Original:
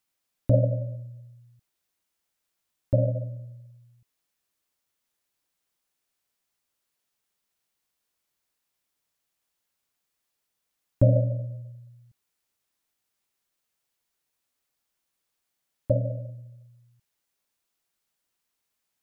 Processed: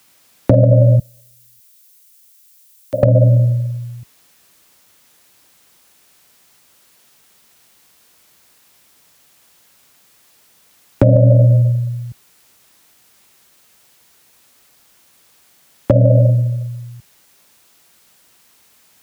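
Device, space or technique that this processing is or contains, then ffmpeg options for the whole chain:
mastering chain: -filter_complex "[0:a]asettb=1/sr,asplit=3[a][b][c];[a]atrim=end=0.994[d];[b]atrim=start=0.99:end=3.03,asetpts=PTS-STARTPTS,afade=t=in:d=0.004:c=qsin,afade=t=out:st=2.036:d=0.004:c=qsin,aderivative[e];[c]atrim=start=3.026[f];[d][e]acrossfade=d=0.004:c1=hsin:c2=qsin[g];[g][f]acrossfade=d=0.004:c1=qsin:c2=hsin,highpass=51,equalizer=f=180:t=o:w=0.77:g=2,acrossover=split=160|660[h][i][j];[h]acompressor=threshold=-36dB:ratio=4[k];[i]acompressor=threshold=-32dB:ratio=4[l];[j]acompressor=threshold=-42dB:ratio=4[m];[k][l][m]amix=inputs=3:normalize=0,acompressor=threshold=-34dB:ratio=2.5,asoftclip=type=hard:threshold=-25.5dB,alimiter=level_in=28.5dB:limit=-1dB:release=50:level=0:latency=1,volume=-1dB"

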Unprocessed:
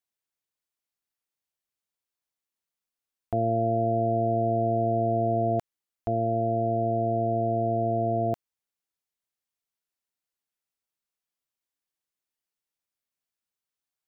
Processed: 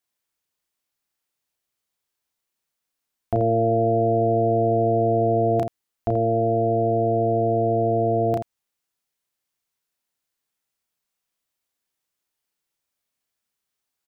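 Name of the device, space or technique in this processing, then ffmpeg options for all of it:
slapback doubling: -filter_complex "[0:a]asplit=3[a][b][c];[b]adelay=33,volume=-3.5dB[d];[c]adelay=83,volume=-8dB[e];[a][d][e]amix=inputs=3:normalize=0,volume=5.5dB"

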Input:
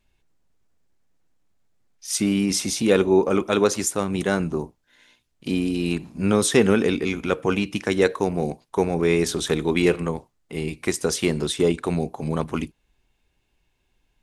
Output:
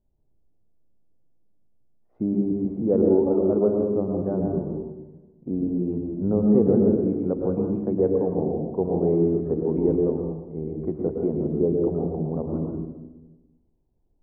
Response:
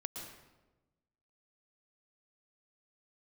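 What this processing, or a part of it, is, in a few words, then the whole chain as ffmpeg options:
next room: -filter_complex "[0:a]lowpass=f=700:w=0.5412,lowpass=f=700:w=1.3066[a];[1:a]atrim=start_sample=2205[b];[a][b]afir=irnorm=-1:irlink=0"

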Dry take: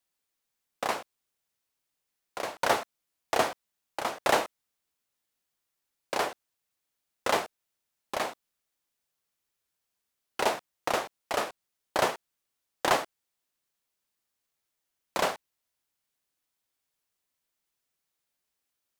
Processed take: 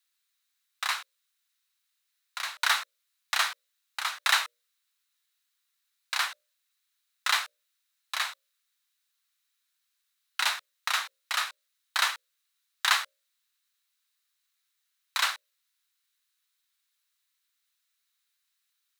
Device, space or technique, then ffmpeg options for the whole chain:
headphones lying on a table: -filter_complex "[0:a]bandreject=f=60:t=h:w=6,bandreject=f=120:t=h:w=6,bandreject=f=180:t=h:w=6,bandreject=f=240:t=h:w=6,bandreject=f=300:t=h:w=6,bandreject=f=360:t=h:w=6,bandreject=f=420:t=h:w=6,bandreject=f=480:t=h:w=6,bandreject=f=540:t=h:w=6,bandreject=f=600:t=h:w=6,asettb=1/sr,asplit=3[a][b][c];[a]atrim=end=12.134[d];[b]atrim=start=12.13:end=13.03,asetpts=PTS-STARTPTS,afade=t=in:d=0.004:c=qsin,afade=t=out:st=0.896:d=0.004:c=qsin,highpass=500[e];[c]atrim=start=13.026[f];[d][e]acrossfade=d=0.004:c1=hsin:c2=qsin[g];[g][f]acrossfade=d=0.004:c1=qsin:c2=hsin,highpass=f=1.3k:w=0.5412,highpass=f=1.3k:w=1.3066,equalizer=f=1.1k:t=o:w=1.8:g=2.5,equalizer=f=3.9k:t=o:w=0.21:g=8.5,volume=4dB"

